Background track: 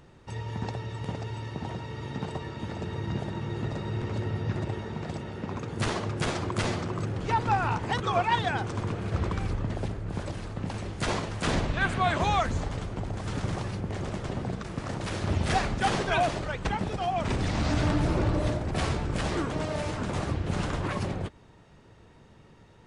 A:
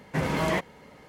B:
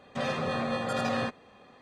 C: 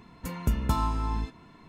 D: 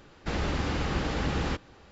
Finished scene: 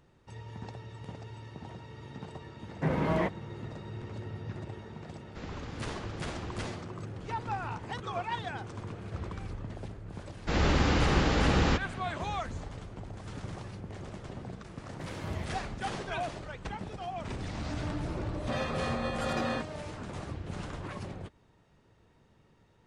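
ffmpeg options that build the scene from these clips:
-filter_complex "[1:a]asplit=2[s0][s1];[4:a]asplit=2[s2][s3];[0:a]volume=0.335[s4];[s0]lowpass=f=1100:p=1[s5];[s3]dynaudnorm=f=110:g=5:m=5.96[s6];[s1]alimiter=limit=0.126:level=0:latency=1:release=71[s7];[s5]atrim=end=1.08,asetpts=PTS-STARTPTS,volume=0.891,afade=t=in:d=0.004:c=hsin,afade=t=out:st=1.076:d=0.004:c=hsin,adelay=2680[s8];[s2]atrim=end=1.91,asetpts=PTS-STARTPTS,volume=0.211,afade=t=in:d=0.004:c=hsin,afade=t=out:st=1.906:d=0.004:c=hsin,adelay=224469S[s9];[s6]atrim=end=1.91,asetpts=PTS-STARTPTS,volume=0.316,afade=t=in:d=0.004:c=hsin,afade=t=out:st=1.906:d=0.004:c=hsin,adelay=10210[s10];[s7]atrim=end=1.08,asetpts=PTS-STARTPTS,volume=0.15,afade=t=in:d=0.004:c=hsin,afade=t=out:st=1.076:d=0.004:c=hsin,adelay=14850[s11];[2:a]atrim=end=1.81,asetpts=PTS-STARTPTS,volume=0.708,afade=t=in:d=0.004:c=hsin,afade=t=out:st=1.806:d=0.004:c=hsin,adelay=18320[s12];[s4][s8][s9][s10][s11][s12]amix=inputs=6:normalize=0"

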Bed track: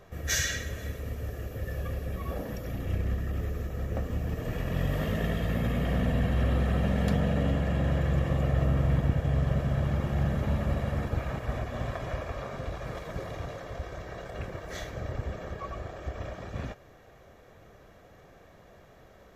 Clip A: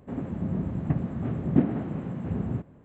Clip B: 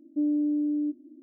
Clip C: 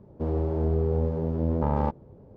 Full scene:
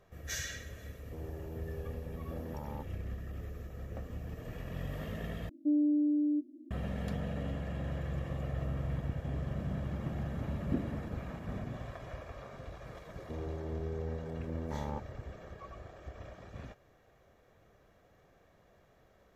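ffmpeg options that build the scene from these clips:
-filter_complex "[3:a]asplit=2[s0][s1];[0:a]volume=0.299,asplit=2[s2][s3];[s2]atrim=end=5.494[s4];[2:a]atrim=end=1.22,asetpts=PTS-STARTPTS,volume=0.75[s5];[s3]atrim=start=6.706[s6];[s0]atrim=end=2.36,asetpts=PTS-STARTPTS,volume=0.133,afade=t=in:d=0.004:c=hsin,afade=t=out:st=2.356:d=0.004:c=hsin,adelay=920[s7];[1:a]atrim=end=2.84,asetpts=PTS-STARTPTS,volume=0.237,afade=t=in:d=0.004:c=hsin,afade=t=out:st=2.836:d=0.004:c=hsin,adelay=9160[s8];[s1]atrim=end=2.36,asetpts=PTS-STARTPTS,volume=0.224,afade=t=in:d=0.004:c=hsin,afade=t=out:st=2.356:d=0.004:c=hsin,adelay=13090[s9];[s4][s5]acrossfade=d=0.004:c1=hsin:c2=hsin[s10];[s10][s6]acrossfade=d=0.004:c1=hsin:c2=hsin[s11];[s11][s7][s8][s9]amix=inputs=4:normalize=0"

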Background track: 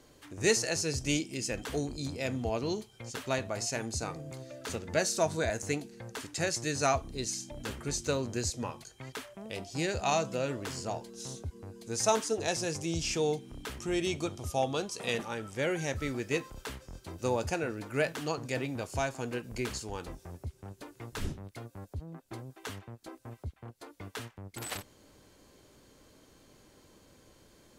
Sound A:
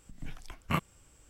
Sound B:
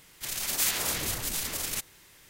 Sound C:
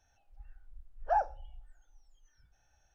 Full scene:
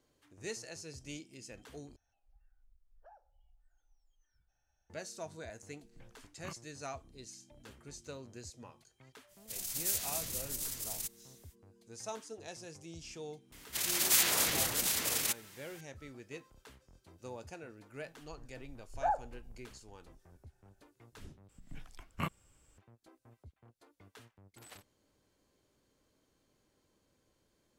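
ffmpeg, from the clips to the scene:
-filter_complex "[3:a]asplit=2[s0][s1];[1:a]asplit=2[s2][s3];[2:a]asplit=2[s4][s5];[0:a]volume=0.168[s6];[s0]acompressor=threshold=0.00251:ratio=4:attack=25:release=235:knee=1:detection=rms[s7];[s4]bass=f=250:g=8,treble=f=4000:g=12[s8];[s5]highpass=f=160:p=1[s9];[s1]lowpass=2000[s10];[s3]bandreject=f=5900:w=27[s11];[s6]asplit=3[s12][s13][s14];[s12]atrim=end=1.964[s15];[s7]atrim=end=2.94,asetpts=PTS-STARTPTS,volume=0.316[s16];[s13]atrim=start=4.896:end=21.494[s17];[s11]atrim=end=1.29,asetpts=PTS-STARTPTS,volume=0.473[s18];[s14]atrim=start=22.776[s19];[s2]atrim=end=1.29,asetpts=PTS-STARTPTS,volume=0.133,afade=t=in:d=0.004:c=hsin,afade=t=out:st=1.286:d=0.004:c=hsin,adelay=5740[s20];[s8]atrim=end=2.29,asetpts=PTS-STARTPTS,volume=0.133,afade=t=in:d=0.05,afade=t=out:st=2.24:d=0.05,adelay=9270[s21];[s9]atrim=end=2.29,asetpts=PTS-STARTPTS,afade=t=in:d=0.004:c=hsin,afade=t=out:st=2.286:d=0.004:c=hsin,adelay=13520[s22];[s10]atrim=end=2.94,asetpts=PTS-STARTPTS,volume=0.708,afade=t=in:d=0.004:c=hsin,afade=t=out:st=2.936:d=0.004:c=hsin,adelay=17930[s23];[s15][s16]acrossfade=d=0.004:c1=hsin:c2=hsin[s24];[s24][s17]acrossfade=d=0.004:c1=hsin:c2=hsin[s25];[s25][s18]acrossfade=d=0.004:c1=hsin:c2=hsin[s26];[s26][s19]acrossfade=d=0.004:c1=hsin:c2=hsin[s27];[s27][s20][s21][s22][s23]amix=inputs=5:normalize=0"

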